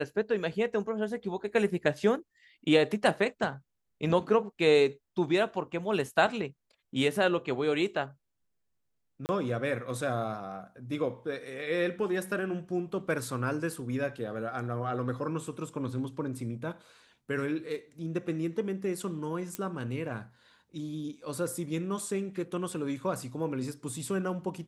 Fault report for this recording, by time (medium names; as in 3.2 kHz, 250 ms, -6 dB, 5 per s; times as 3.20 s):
9.26–9.29 s: dropout 29 ms
19.55 s: pop -17 dBFS